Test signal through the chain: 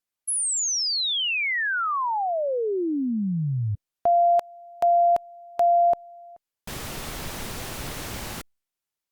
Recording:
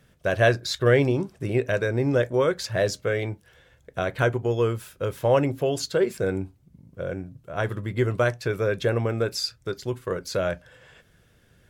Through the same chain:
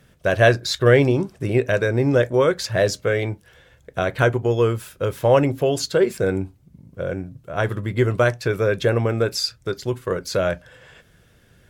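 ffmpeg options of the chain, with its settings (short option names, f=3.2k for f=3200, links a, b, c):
-af "volume=4.5dB" -ar 48000 -c:a libopus -b:a 96k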